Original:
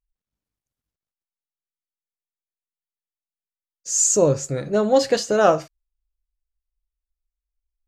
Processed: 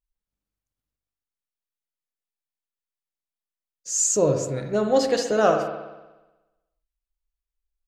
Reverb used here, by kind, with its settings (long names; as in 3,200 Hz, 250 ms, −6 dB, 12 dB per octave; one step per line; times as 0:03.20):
spring reverb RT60 1.1 s, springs 60 ms, chirp 35 ms, DRR 4.5 dB
level −3.5 dB